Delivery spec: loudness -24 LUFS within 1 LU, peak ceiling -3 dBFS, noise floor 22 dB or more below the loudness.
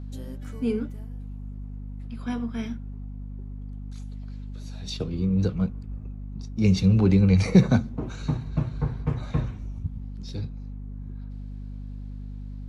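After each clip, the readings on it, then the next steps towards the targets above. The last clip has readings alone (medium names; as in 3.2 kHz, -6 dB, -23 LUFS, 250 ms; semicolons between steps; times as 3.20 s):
hum 50 Hz; highest harmonic 250 Hz; hum level -33 dBFS; loudness -25.5 LUFS; peak level -4.5 dBFS; loudness target -24.0 LUFS
-> hum notches 50/100/150/200/250 Hz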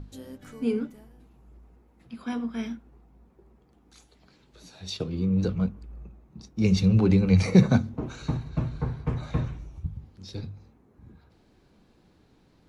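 hum not found; loudness -26.0 LUFS; peak level -5.5 dBFS; loudness target -24.0 LUFS
-> trim +2 dB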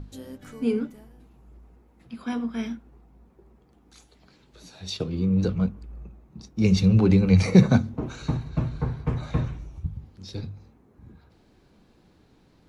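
loudness -24.0 LUFS; peak level -3.5 dBFS; noise floor -59 dBFS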